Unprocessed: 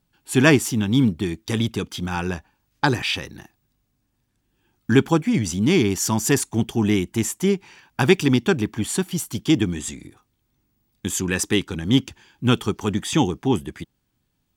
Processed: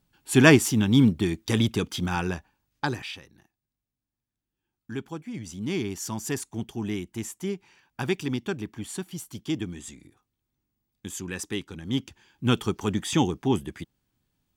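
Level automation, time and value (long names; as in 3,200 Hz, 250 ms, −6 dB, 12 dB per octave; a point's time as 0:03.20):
0:02.04 −0.5 dB
0:02.96 −9.5 dB
0:03.27 −18 dB
0:05.14 −18 dB
0:05.75 −11 dB
0:11.82 −11 dB
0:12.59 −3.5 dB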